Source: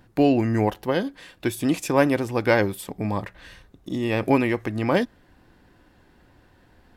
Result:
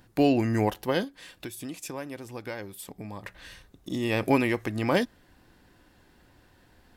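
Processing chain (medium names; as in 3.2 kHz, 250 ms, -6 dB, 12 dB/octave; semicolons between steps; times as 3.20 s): 1.04–3.25 s: compression 2.5:1, threshold -38 dBFS, peak gain reduction 16.5 dB; treble shelf 3.4 kHz +8 dB; trim -3.5 dB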